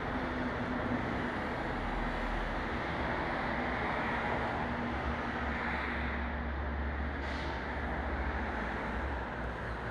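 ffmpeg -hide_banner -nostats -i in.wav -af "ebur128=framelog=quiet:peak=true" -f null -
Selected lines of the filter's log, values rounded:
Integrated loudness:
  I:         -35.5 LUFS
  Threshold: -45.5 LUFS
Loudness range:
  LRA:         2.3 LU
  Threshold: -55.3 LUFS
  LRA low:   -36.7 LUFS
  LRA high:  -34.4 LUFS
True peak:
  Peak:      -21.5 dBFS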